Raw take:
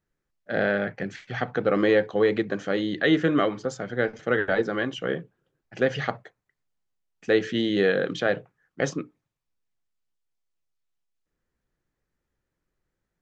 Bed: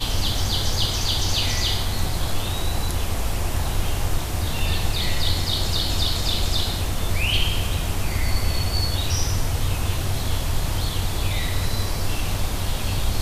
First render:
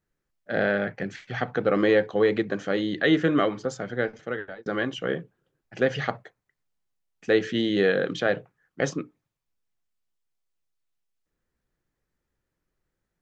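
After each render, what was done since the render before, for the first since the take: 3.88–4.66 fade out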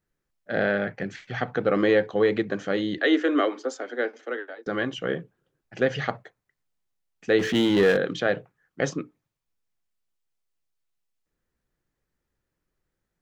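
2.98–4.67 steep high-pass 250 Hz 72 dB/oct; 7.39–7.97 power-law curve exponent 0.7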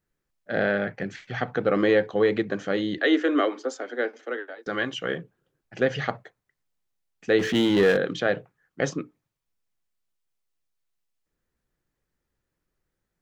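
4.58–5.18 tilt shelf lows -3.5 dB, about 850 Hz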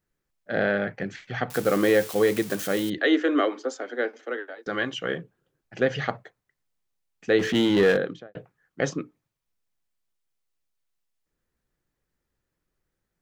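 1.5–2.9 switching spikes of -24 dBFS; 7.92–8.35 studio fade out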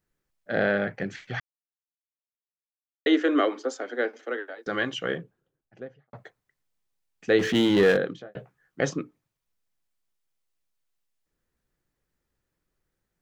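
1.4–3.06 mute; 5–6.13 studio fade out; 8.16–8.81 doubler 15 ms -5 dB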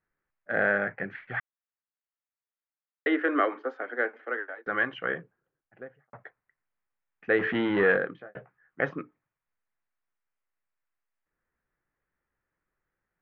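LPF 1900 Hz 24 dB/oct; tilt shelf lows -7.5 dB, about 880 Hz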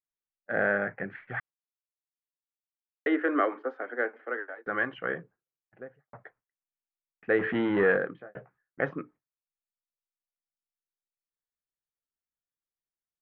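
LPF 1900 Hz 6 dB/oct; gate with hold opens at -53 dBFS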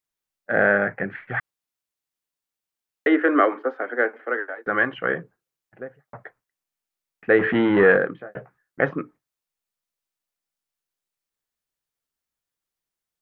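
gain +8 dB

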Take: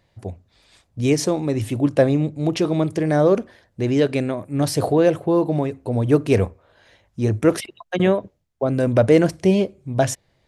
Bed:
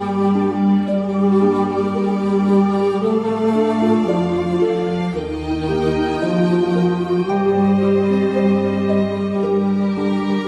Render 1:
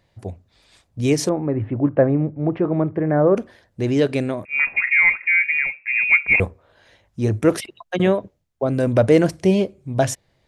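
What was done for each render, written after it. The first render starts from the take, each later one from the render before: 1.29–3.37 LPF 1800 Hz 24 dB/oct; 4.45–6.4 inverted band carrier 2600 Hz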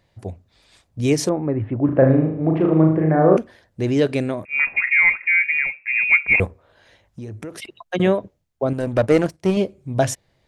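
1.85–3.37 flutter echo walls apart 6.5 m, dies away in 0.64 s; 6.46–7.62 compressor, threshold -31 dBFS; 8.73–9.57 power-law curve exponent 1.4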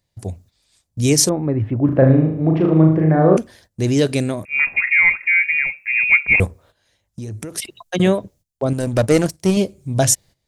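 gate -49 dBFS, range -14 dB; tone controls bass +5 dB, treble +15 dB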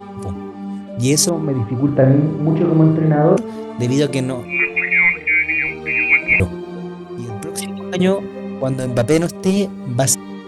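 add bed -12.5 dB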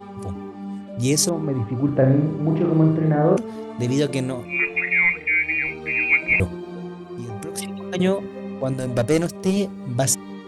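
gain -4.5 dB

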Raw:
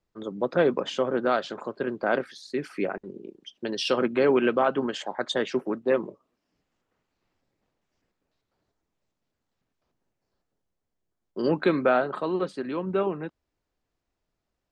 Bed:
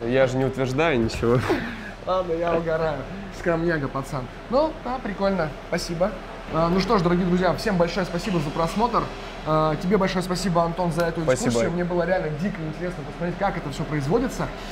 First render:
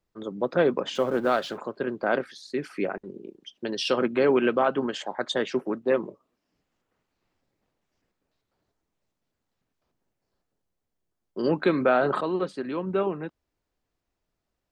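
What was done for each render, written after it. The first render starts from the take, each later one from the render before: 0.95–1.58 G.711 law mismatch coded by mu; 11.72–12.21 sustainer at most 37 dB/s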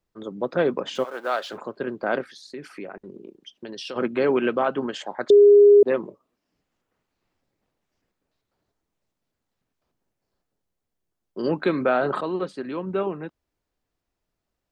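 1.03–1.52 HPF 900 Hz -> 390 Hz; 2.38–3.96 compressor 2.5:1, threshold -35 dBFS; 5.3–5.83 bleep 409 Hz -8.5 dBFS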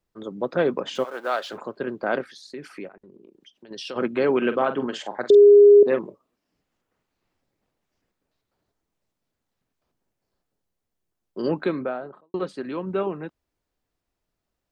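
2.88–3.71 compressor 2:1, threshold -52 dBFS; 4.37–5.99 doubler 46 ms -11 dB; 11.4–12.34 studio fade out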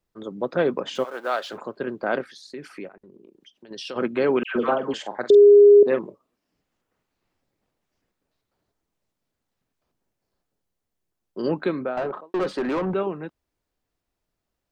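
4.43–4.94 dispersion lows, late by 0.127 s, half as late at 1200 Hz; 11.97–12.94 overdrive pedal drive 27 dB, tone 1200 Hz, clips at -16.5 dBFS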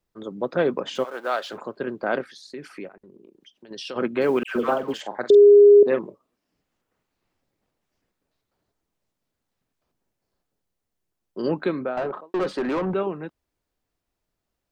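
4.21–5.01 G.711 law mismatch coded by A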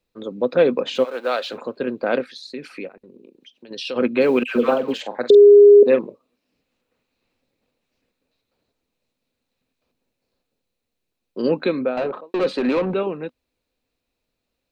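thirty-one-band EQ 250 Hz +8 dB, 500 Hz +9 dB, 2500 Hz +10 dB, 4000 Hz +10 dB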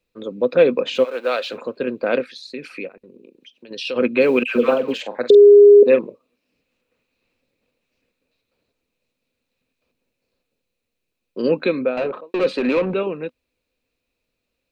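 thirty-one-band EQ 500 Hz +3 dB, 800 Hz -4 dB, 2500 Hz +6 dB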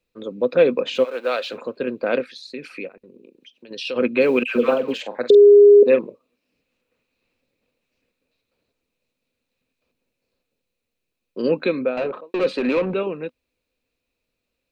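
gain -1.5 dB

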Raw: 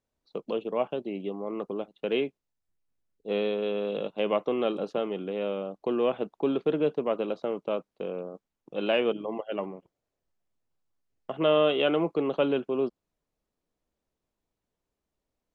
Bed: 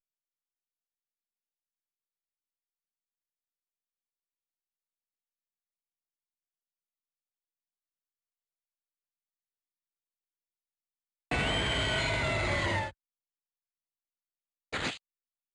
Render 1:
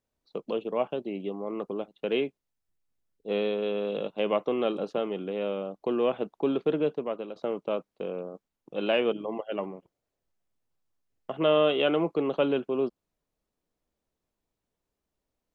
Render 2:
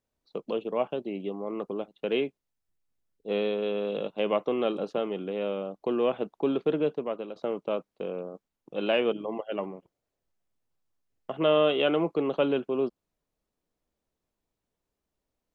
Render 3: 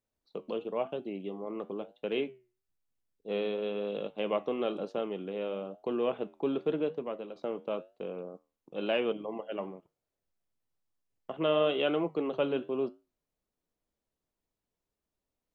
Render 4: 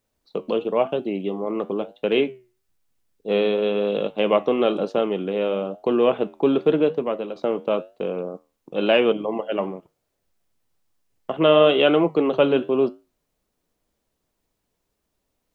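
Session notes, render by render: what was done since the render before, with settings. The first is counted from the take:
6.75–7.36 fade out, to -10 dB
nothing audible
flange 1 Hz, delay 8.9 ms, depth 3.6 ms, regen -80%
gain +12 dB

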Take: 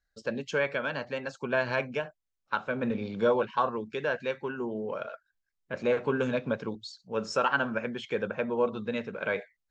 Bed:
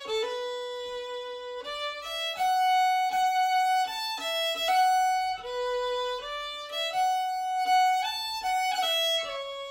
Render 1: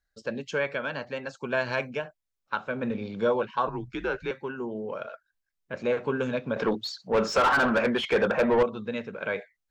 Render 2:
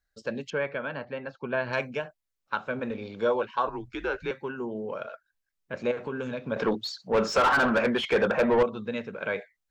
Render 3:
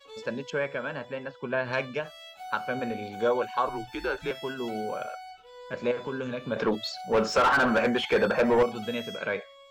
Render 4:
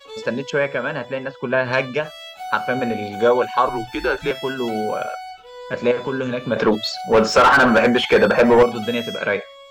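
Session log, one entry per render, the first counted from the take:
1.43–1.9 high shelf 5400 Hz +8.5 dB; 3.67–4.31 frequency shift -95 Hz; 6.56–8.63 overdrive pedal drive 26 dB, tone 1500 Hz, clips at -12.5 dBFS
0.5–1.73 air absorption 310 m; 2.79–4.19 bell 160 Hz -12 dB; 5.91–6.52 compressor 3:1, threshold -30 dBFS
add bed -15 dB
gain +9.5 dB

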